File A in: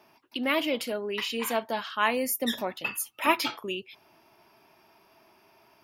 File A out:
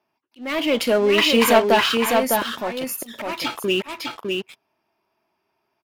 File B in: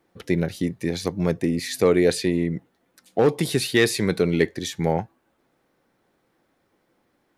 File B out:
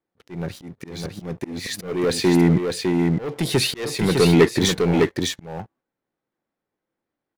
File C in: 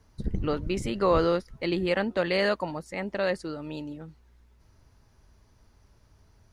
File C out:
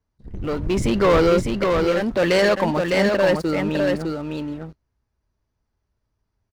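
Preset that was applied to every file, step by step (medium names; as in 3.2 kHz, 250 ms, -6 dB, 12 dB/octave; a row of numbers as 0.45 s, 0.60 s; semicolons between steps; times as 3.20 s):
gate -47 dBFS, range -12 dB; treble shelf 5.5 kHz -6.5 dB; waveshaping leveller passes 3; slow attack 677 ms; delay 605 ms -4 dB; normalise loudness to -20 LUFS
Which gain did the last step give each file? +4.5 dB, +0.5 dB, +1.5 dB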